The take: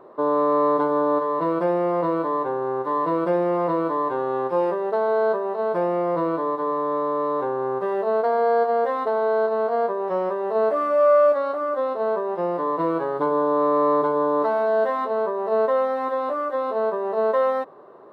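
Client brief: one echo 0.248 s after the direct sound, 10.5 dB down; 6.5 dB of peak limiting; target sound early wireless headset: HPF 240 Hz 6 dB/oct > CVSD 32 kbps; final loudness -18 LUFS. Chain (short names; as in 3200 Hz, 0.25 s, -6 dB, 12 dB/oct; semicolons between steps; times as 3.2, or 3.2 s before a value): limiter -15 dBFS; HPF 240 Hz 6 dB/oct; echo 0.248 s -10.5 dB; CVSD 32 kbps; gain +6 dB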